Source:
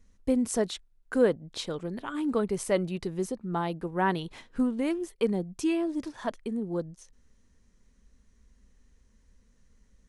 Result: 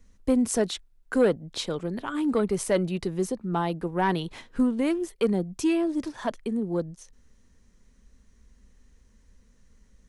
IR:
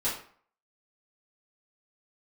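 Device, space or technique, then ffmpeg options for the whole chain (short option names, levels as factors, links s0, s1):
one-band saturation: -filter_complex "[0:a]acrossover=split=210|3600[s0][s1][s2];[s1]asoftclip=type=tanh:threshold=0.112[s3];[s0][s3][s2]amix=inputs=3:normalize=0,volume=1.58"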